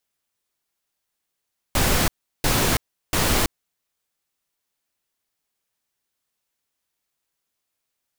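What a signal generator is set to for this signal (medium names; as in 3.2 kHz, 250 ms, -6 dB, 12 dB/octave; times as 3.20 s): noise bursts pink, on 0.33 s, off 0.36 s, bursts 3, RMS -19.5 dBFS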